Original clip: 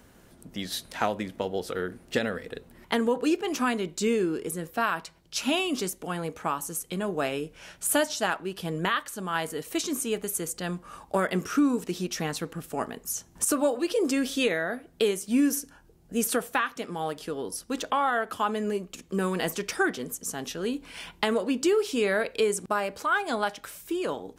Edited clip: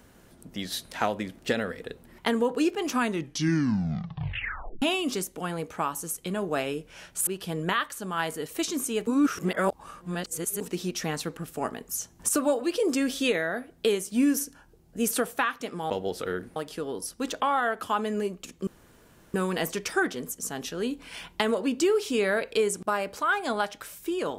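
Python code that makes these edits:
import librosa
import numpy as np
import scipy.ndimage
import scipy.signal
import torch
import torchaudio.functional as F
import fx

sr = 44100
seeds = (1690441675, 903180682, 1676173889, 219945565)

y = fx.edit(x, sr, fx.move(start_s=1.39, length_s=0.66, to_s=17.06),
    fx.tape_stop(start_s=3.64, length_s=1.84),
    fx.cut(start_s=7.93, length_s=0.5),
    fx.reverse_span(start_s=10.23, length_s=1.54),
    fx.insert_room_tone(at_s=19.17, length_s=0.67), tone=tone)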